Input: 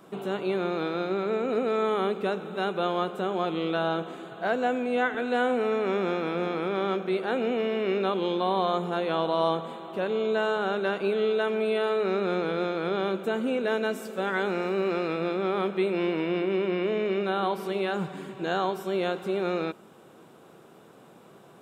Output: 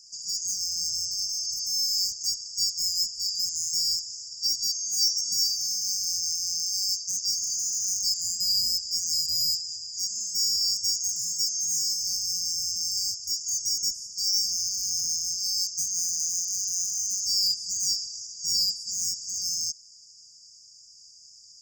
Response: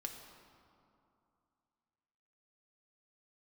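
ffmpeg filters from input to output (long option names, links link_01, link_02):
-filter_complex "[0:a]afftfilt=real='real(if(lt(b,736),b+184*(1-2*mod(floor(b/184),2)),b),0)':imag='imag(if(lt(b,736),b+184*(1-2*mod(floor(b/184),2)),b),0)':win_size=2048:overlap=0.75,lowpass=frequency=6700:width_type=q:width=5.4,acrossover=split=4200[link_01][link_02];[link_02]aeval=exprs='0.119*(abs(mod(val(0)/0.119+3,4)-2)-1)':channel_layout=same[link_03];[link_01][link_03]amix=inputs=2:normalize=0,afftfilt=real='re*(1-between(b*sr/4096,250,4700))':imag='im*(1-between(b*sr/4096,250,4700))':win_size=4096:overlap=0.75"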